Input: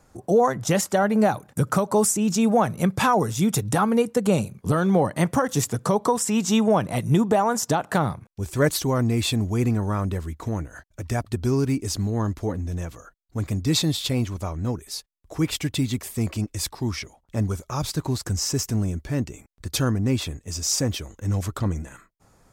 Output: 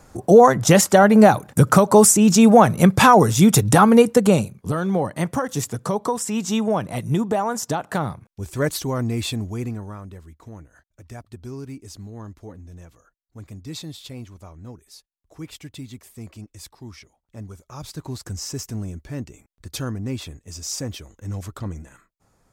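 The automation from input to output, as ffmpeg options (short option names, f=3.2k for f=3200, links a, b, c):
-af "volume=15dB,afade=t=out:st=4.1:d=0.46:silence=0.316228,afade=t=out:st=9.22:d=0.79:silence=0.298538,afade=t=in:st=17.56:d=0.64:silence=0.446684"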